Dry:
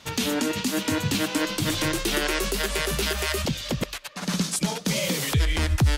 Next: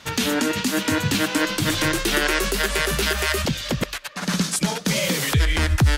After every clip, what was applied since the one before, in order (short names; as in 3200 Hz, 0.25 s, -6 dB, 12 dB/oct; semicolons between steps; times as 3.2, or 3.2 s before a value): bell 1600 Hz +4.5 dB 0.77 oct; gain +3 dB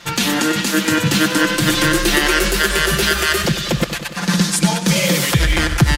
comb 5.8 ms, depth 71%; warbling echo 96 ms, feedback 67%, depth 53 cents, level -11.5 dB; gain +3.5 dB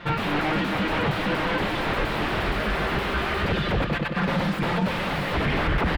wavefolder -19.5 dBFS; air absorption 480 m; gain +4.5 dB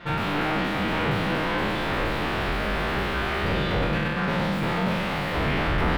spectral trails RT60 1.63 s; gain -4 dB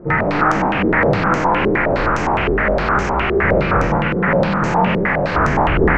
nonlinear frequency compression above 1100 Hz 1.5:1; stepped low-pass 9.7 Hz 410–6300 Hz; gain +7 dB